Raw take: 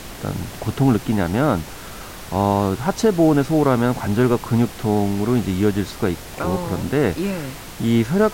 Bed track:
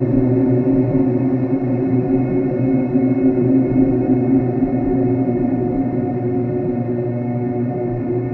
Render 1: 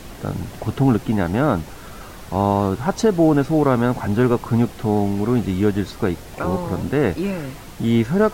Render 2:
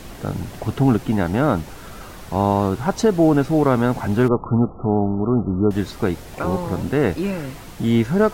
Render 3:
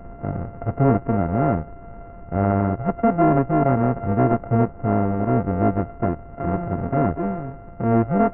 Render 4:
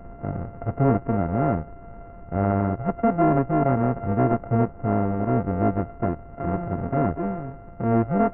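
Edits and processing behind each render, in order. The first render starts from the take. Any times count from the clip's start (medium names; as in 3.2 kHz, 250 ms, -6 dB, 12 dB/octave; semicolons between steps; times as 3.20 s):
noise reduction 6 dB, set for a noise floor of -36 dBFS
4.28–5.71 s: brick-wall FIR low-pass 1.4 kHz
sorted samples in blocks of 64 samples; Gaussian low-pass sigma 6.4 samples
trim -2.5 dB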